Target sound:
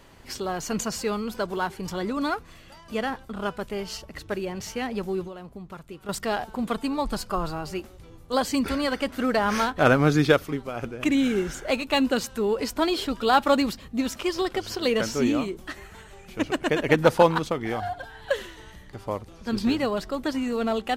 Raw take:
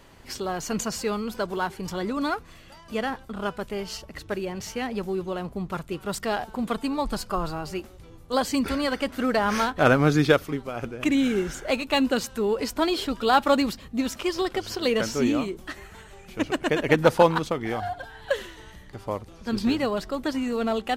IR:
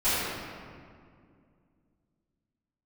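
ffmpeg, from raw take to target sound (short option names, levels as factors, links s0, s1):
-filter_complex "[0:a]asettb=1/sr,asplit=3[s0][s1][s2];[s0]atrim=end=5.274[s3];[s1]atrim=start=5.27:end=6.09,asetpts=PTS-STARTPTS,afade=t=in:d=0.004:c=qsin,afade=t=out:st=0.816:d=0.004:c=qsin,acompressor=threshold=0.01:ratio=3[s4];[s2]atrim=start=6.086[s5];[s3][s4]acrossfade=d=0.004:c1=hsin:c2=qsin[s6];[s6][s5]acrossfade=d=0.004:c1=qsin:c2=hsin"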